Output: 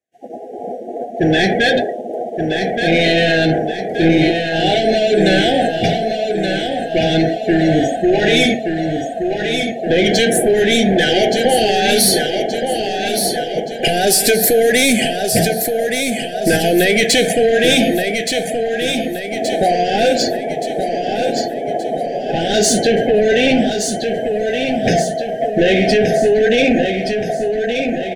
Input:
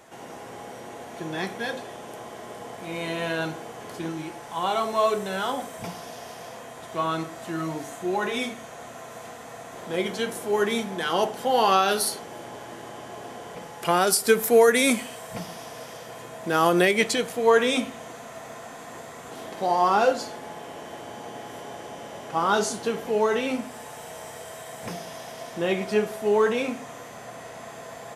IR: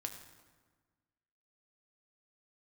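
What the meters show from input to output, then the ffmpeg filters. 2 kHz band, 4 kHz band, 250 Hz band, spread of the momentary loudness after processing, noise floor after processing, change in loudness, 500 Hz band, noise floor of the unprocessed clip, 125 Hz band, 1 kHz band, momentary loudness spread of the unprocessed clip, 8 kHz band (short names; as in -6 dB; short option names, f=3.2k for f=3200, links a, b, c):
+12.0 dB, +14.5 dB, +14.5 dB, 8 LU, -25 dBFS, +9.5 dB, +11.0 dB, -42 dBFS, +16.0 dB, +6.5 dB, 20 LU, +12.0 dB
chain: -filter_complex "[0:a]bandreject=f=60:t=h:w=6,bandreject=f=120:t=h:w=6,bandreject=f=180:t=h:w=6,agate=range=-33dB:threshold=-32dB:ratio=3:detection=peak,afftdn=nr=29:nf=-42,adynamicequalizer=threshold=0.00501:dfrequency=3700:dqfactor=2.4:tfrequency=3700:tqfactor=2.4:attack=5:release=100:ratio=0.375:range=1.5:mode=boostabove:tftype=bell,acompressor=threshold=-30dB:ratio=10,apsyclip=33dB,asoftclip=type=tanh:threshold=-1dB,asuperstop=centerf=1100:order=20:qfactor=1.5,asplit=2[a][b];[b]aecho=0:1:1174|2348|3522|4696|5870|7044:0.501|0.241|0.115|0.0554|0.0266|0.0128[c];[a][c]amix=inputs=2:normalize=0,volume=-6dB"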